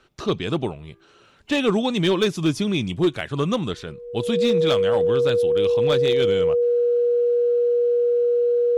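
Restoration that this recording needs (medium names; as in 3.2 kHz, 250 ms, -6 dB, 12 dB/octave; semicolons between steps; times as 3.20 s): clip repair -12.5 dBFS; band-stop 480 Hz, Q 30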